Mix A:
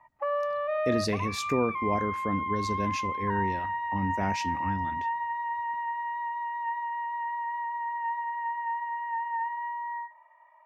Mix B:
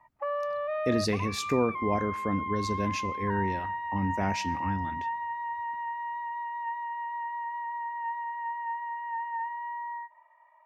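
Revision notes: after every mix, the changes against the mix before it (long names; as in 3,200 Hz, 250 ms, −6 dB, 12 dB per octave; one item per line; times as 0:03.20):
speech: send +11.0 dB
background: send off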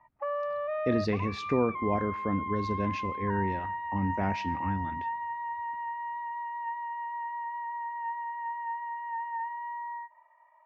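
master: add high-frequency loss of the air 230 metres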